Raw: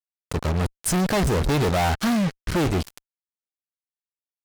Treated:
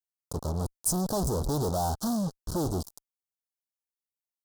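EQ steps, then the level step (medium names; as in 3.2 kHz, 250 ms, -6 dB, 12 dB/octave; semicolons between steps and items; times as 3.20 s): Chebyshev band-stop 950–5100 Hz, order 2; treble shelf 7.2 kHz +8.5 dB; -6.5 dB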